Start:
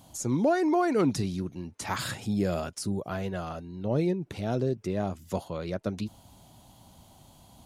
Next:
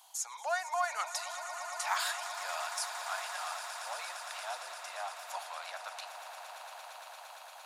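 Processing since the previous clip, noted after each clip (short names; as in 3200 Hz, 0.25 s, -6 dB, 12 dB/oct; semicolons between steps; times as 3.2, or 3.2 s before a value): steep high-pass 760 Hz 48 dB/oct; on a send: swelling echo 0.115 s, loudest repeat 8, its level -14 dB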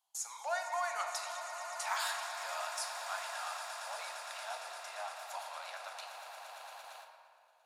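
gate with hold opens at -37 dBFS; reverb RT60 2.4 s, pre-delay 6 ms, DRR 3.5 dB; gain -3.5 dB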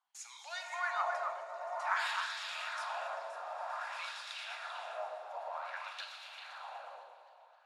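wah 0.53 Hz 420–3600 Hz, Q 2.1; delay with a stepping band-pass 0.131 s, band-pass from 470 Hz, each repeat 1.4 oct, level -1 dB; warbling echo 0.257 s, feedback 64%, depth 117 cents, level -19 dB; gain +6.5 dB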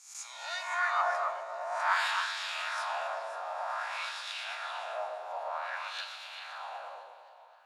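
spectral swells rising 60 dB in 0.61 s; gain +3 dB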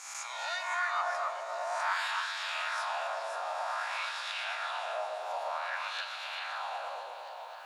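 three-band squash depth 70%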